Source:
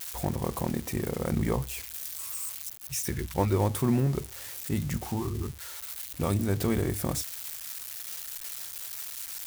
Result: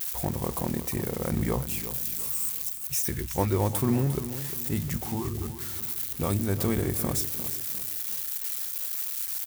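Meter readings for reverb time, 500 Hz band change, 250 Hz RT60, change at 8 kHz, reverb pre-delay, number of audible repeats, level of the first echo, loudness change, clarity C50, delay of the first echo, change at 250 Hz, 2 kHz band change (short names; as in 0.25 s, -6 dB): none, +0.5 dB, none, +3.5 dB, none, 3, -12.0 dB, +3.0 dB, none, 0.352 s, +0.5 dB, +0.5 dB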